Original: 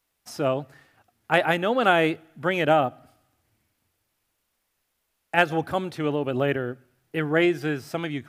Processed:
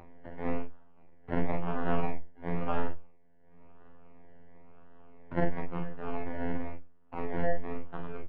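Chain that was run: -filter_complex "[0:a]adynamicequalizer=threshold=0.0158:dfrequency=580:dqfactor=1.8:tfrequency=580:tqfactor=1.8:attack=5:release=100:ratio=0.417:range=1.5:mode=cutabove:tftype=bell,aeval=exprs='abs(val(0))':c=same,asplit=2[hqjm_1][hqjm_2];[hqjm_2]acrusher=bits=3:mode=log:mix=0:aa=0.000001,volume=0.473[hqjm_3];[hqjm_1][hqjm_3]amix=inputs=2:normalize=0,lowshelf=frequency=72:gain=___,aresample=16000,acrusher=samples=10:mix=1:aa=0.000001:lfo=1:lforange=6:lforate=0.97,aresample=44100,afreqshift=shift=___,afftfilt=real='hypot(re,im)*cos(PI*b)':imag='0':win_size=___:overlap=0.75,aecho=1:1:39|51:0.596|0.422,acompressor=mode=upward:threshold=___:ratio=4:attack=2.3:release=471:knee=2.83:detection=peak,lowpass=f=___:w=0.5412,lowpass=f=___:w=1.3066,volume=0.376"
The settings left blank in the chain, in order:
4, -20, 2048, 0.0794, 2.1k, 2.1k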